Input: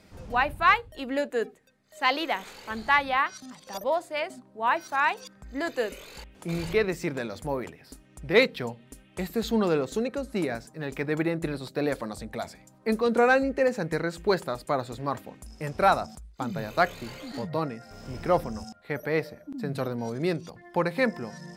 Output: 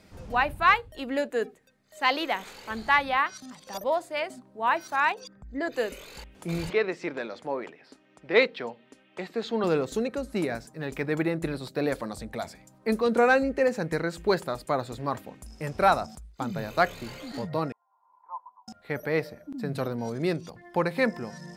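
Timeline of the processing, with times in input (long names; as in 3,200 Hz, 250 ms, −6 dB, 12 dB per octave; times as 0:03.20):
0:05.12–0:05.73: spectral envelope exaggerated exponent 1.5
0:06.70–0:09.64: band-pass filter 300–4,100 Hz
0:17.72–0:18.68: flat-topped band-pass 970 Hz, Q 7.8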